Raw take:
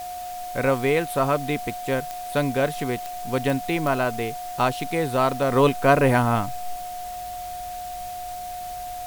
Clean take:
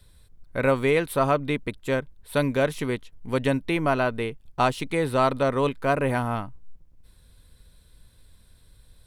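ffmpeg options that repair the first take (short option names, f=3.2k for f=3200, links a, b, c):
-af "adeclick=t=4,bandreject=f=720:w=30,afwtdn=0.0071,asetnsamples=n=441:p=0,asendcmd='5.51 volume volume -6dB',volume=0dB"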